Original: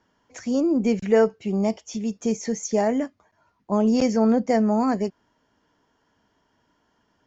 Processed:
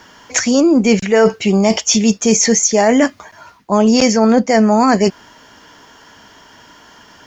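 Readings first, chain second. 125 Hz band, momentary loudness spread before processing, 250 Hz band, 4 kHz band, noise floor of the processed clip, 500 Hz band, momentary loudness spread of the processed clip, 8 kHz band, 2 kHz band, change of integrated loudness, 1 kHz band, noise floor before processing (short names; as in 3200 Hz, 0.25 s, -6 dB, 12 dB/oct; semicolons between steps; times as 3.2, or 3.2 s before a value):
+10.0 dB, 9 LU, +9.0 dB, +20.0 dB, -45 dBFS, +9.0 dB, 5 LU, n/a, +15.5 dB, +10.0 dB, +11.0 dB, -69 dBFS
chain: tilt shelf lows -5.5 dB; reverse; compressor 8:1, threshold -33 dBFS, peak gain reduction 16.5 dB; reverse; maximiser +25.5 dB; gain -1 dB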